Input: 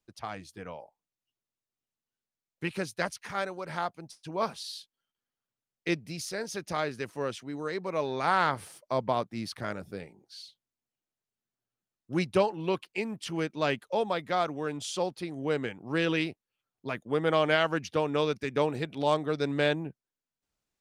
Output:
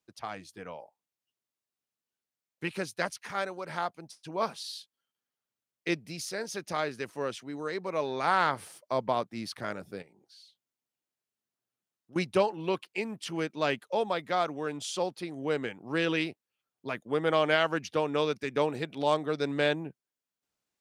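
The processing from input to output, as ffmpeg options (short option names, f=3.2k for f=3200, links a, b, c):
-filter_complex "[0:a]asettb=1/sr,asplit=3[a][b][c];[a]atrim=end=10.024[d];[b]atrim=start=10.02:end=12.16,asetpts=PTS-STARTPTS,afade=t=in:d=0.004:c=qsin,afade=t=out:st=2.136:d=0.004:c=qsin,acompressor=threshold=-59dB:ratio=2:attack=3.2:release=140:knee=1:detection=peak[e];[c]atrim=start=12.156[f];[d][e]acrossfade=d=0.004:c1=hsin:c2=qsin[g];[g][f]acrossfade=d=0.004:c1=qsin:c2=hsin,highpass=f=170:p=1"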